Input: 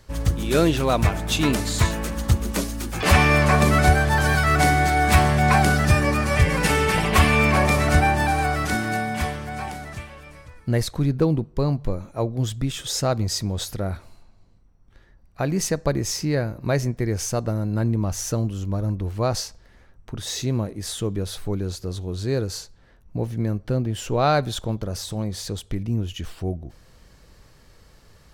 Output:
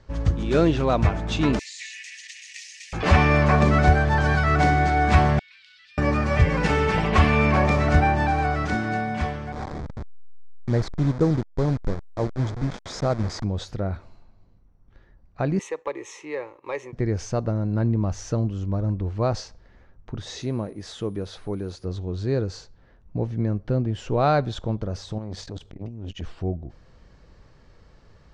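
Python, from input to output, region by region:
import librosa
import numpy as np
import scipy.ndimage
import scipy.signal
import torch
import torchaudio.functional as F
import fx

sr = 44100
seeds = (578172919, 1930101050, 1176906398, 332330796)

y = fx.chain(x, sr, fx.law_mismatch(coded='mu'),
    fx.cheby_ripple_highpass(hz=1800.0, ripple_db=6),
    fx.env_flatten(amount_pct=70), at=(1.59, 2.93))
y = fx.chain(y, sr, fx.cheby2_highpass(hz=800.0, order=4, stop_db=70),
    fx.air_absorb(metres=450.0),
    fx.env_flatten(amount_pct=70), at=(5.39, 5.98))
y = fx.chain(y, sr, fx.delta_hold(step_db=-25.0),
    fx.peak_eq(hz=2800.0, db=-13.0, octaves=0.3), at=(9.52, 13.44))
y = fx.chain(y, sr, fx.highpass(hz=620.0, slope=12),
    fx.fixed_phaser(hz=1000.0, stages=8),
    fx.leveller(passes=1), at=(15.59, 16.93))
y = fx.low_shelf(y, sr, hz=130.0, db=-10.5, at=(20.37, 21.84), fade=0.02)
y = fx.dmg_tone(y, sr, hz=9700.0, level_db=-40.0, at=(20.37, 21.84), fade=0.02)
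y = fx.chain(y, sr, fx.over_compress(threshold_db=-31.0, ratio=-1.0),
    fx.transformer_sat(knee_hz=350.0), at=(25.18, 26.22))
y = scipy.signal.sosfilt(scipy.signal.butter(4, 6700.0, 'lowpass', fs=sr, output='sos'), y)
y = fx.high_shelf(y, sr, hz=2500.0, db=-9.5)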